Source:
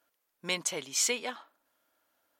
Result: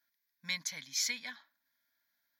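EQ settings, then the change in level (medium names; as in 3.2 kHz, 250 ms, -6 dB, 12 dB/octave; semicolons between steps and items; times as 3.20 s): bass shelf 170 Hz -9.5 dB; high-order bell 580 Hz -15.5 dB; static phaser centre 1.9 kHz, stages 8; 0.0 dB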